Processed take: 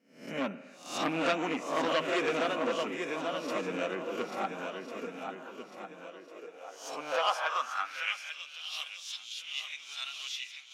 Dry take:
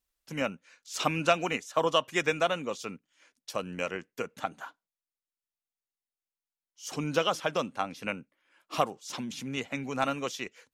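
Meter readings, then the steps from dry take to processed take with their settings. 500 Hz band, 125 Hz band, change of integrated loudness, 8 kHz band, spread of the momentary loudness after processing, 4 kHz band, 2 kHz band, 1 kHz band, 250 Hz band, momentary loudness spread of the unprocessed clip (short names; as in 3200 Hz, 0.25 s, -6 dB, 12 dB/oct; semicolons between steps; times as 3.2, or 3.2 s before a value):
-2.0 dB, -9.5 dB, -2.0 dB, -3.5 dB, 16 LU, 0.0 dB, -1.0 dB, -1.5 dB, -1.0 dB, 13 LU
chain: spectral swells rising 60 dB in 0.49 s; high shelf 5600 Hz -6.5 dB; on a send: swung echo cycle 1.399 s, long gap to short 1.5:1, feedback 34%, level -6.5 dB; on the sum: flange 0.2 Hz, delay 4.3 ms, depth 4 ms, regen -42%; spring tank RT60 1.3 s, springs 47/54 ms, chirp 55 ms, DRR 15.5 dB; high-pass sweep 250 Hz -> 3300 Hz, 6.03–8.62; core saturation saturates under 1900 Hz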